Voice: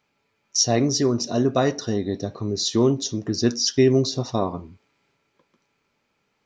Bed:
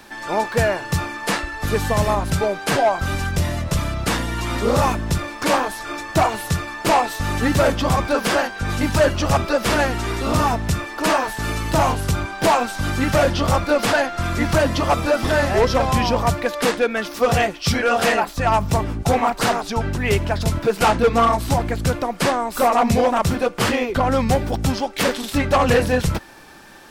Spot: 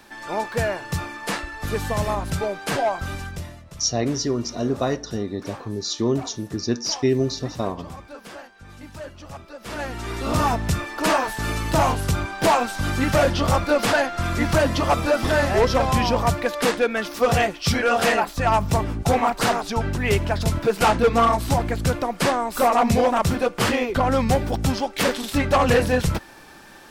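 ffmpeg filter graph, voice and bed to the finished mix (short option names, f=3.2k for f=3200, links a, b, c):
-filter_complex "[0:a]adelay=3250,volume=-3dB[a];[1:a]volume=14dB,afade=t=out:st=2.93:d=0.68:silence=0.16788,afade=t=in:st=9.59:d=0.91:silence=0.112202[b];[a][b]amix=inputs=2:normalize=0"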